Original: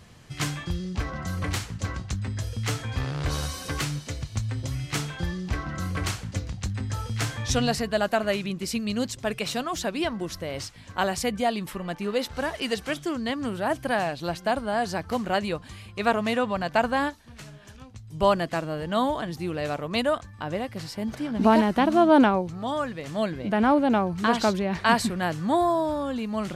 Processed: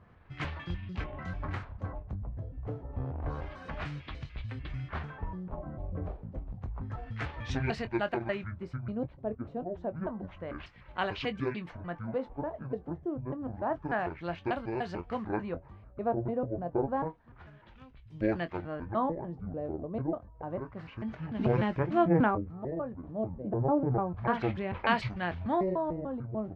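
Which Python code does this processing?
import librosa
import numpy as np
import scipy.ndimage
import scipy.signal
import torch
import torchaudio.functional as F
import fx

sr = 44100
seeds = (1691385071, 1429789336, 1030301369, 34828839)

y = fx.pitch_trill(x, sr, semitones=-10.5, every_ms=148)
y = fx.filter_lfo_lowpass(y, sr, shape='sine', hz=0.29, low_hz=550.0, high_hz=2800.0, q=1.3)
y = fx.doubler(y, sr, ms=23.0, db=-12.0)
y = y * librosa.db_to_amplitude(-7.5)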